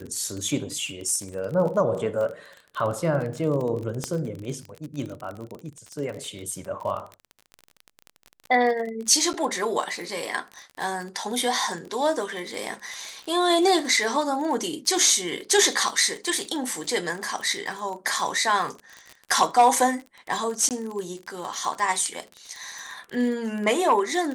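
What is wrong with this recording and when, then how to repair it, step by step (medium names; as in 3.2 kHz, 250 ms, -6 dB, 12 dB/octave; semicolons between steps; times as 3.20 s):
crackle 33 per s -30 dBFS
4.04 s: pop -13 dBFS
9.33–9.34 s: dropout 9.8 ms
20.69–20.71 s: dropout 18 ms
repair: de-click; interpolate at 9.33 s, 9.8 ms; interpolate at 20.69 s, 18 ms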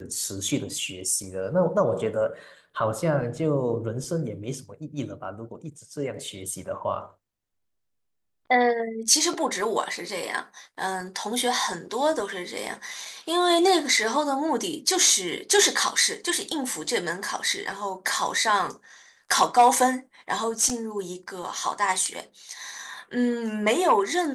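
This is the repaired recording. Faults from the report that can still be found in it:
nothing left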